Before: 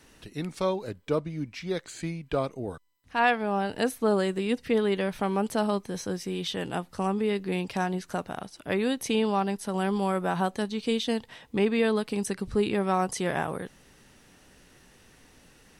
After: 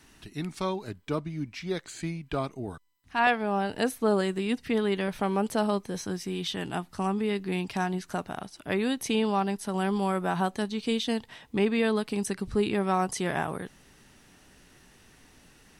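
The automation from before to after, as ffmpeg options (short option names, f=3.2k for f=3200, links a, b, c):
-af "asetnsamples=n=441:p=0,asendcmd='1.45 equalizer g -6;2.17 equalizer g -13;3.27 equalizer g -2;4.21 equalizer g -10.5;5.08 equalizer g 0;5.98 equalizer g -11.5;8.06 equalizer g -5.5',equalizer=f=510:t=o:w=0.28:g=-14.5"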